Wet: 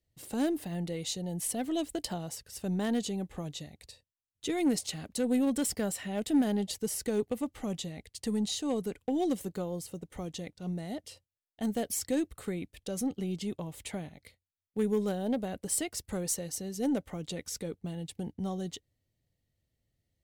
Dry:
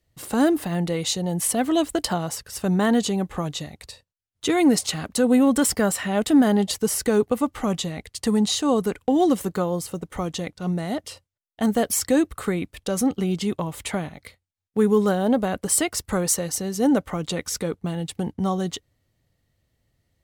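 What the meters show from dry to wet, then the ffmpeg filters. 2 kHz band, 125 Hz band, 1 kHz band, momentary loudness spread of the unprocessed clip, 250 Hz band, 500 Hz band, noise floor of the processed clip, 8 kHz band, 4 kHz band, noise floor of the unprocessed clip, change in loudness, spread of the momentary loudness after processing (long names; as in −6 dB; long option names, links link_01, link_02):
−13.5 dB, −10.0 dB, −14.0 dB, 11 LU, −10.5 dB, −11.0 dB, below −85 dBFS, −10.0 dB, −10.5 dB, −78 dBFS, −10.5 dB, 11 LU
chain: -af "aeval=exprs='0.376*(cos(1*acos(clip(val(0)/0.376,-1,1)))-cos(1*PI/2))+0.0422*(cos(3*acos(clip(val(0)/0.376,-1,1)))-cos(3*PI/2))+0.00531*(cos(4*acos(clip(val(0)/0.376,-1,1)))-cos(4*PI/2))+0.015*(cos(5*acos(clip(val(0)/0.376,-1,1)))-cos(5*PI/2))':channel_layout=same,equalizer=frequency=1200:width_type=o:width=0.99:gain=-9,volume=-8.5dB"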